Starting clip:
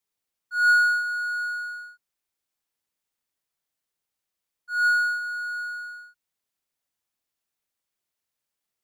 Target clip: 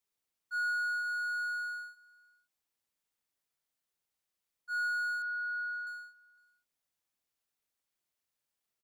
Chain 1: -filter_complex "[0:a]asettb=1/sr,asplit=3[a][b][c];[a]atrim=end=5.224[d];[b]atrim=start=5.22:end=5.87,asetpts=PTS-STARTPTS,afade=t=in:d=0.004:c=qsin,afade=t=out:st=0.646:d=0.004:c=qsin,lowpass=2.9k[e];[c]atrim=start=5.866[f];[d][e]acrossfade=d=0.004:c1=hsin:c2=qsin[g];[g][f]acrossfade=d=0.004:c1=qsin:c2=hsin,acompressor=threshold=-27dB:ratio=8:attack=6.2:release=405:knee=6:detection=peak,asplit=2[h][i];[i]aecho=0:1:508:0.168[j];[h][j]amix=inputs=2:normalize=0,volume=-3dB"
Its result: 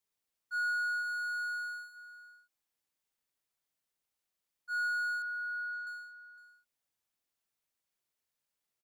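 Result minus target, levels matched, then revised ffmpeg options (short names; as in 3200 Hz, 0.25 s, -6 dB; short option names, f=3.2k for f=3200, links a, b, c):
echo-to-direct +10.5 dB
-filter_complex "[0:a]asettb=1/sr,asplit=3[a][b][c];[a]atrim=end=5.224[d];[b]atrim=start=5.22:end=5.87,asetpts=PTS-STARTPTS,afade=t=in:d=0.004:c=qsin,afade=t=out:st=0.646:d=0.004:c=qsin,lowpass=2.9k[e];[c]atrim=start=5.866[f];[d][e]acrossfade=d=0.004:c1=hsin:c2=qsin[g];[g][f]acrossfade=d=0.004:c1=qsin:c2=hsin,acompressor=threshold=-27dB:ratio=8:attack=6.2:release=405:knee=6:detection=peak,asplit=2[h][i];[i]aecho=0:1:508:0.0501[j];[h][j]amix=inputs=2:normalize=0,volume=-3dB"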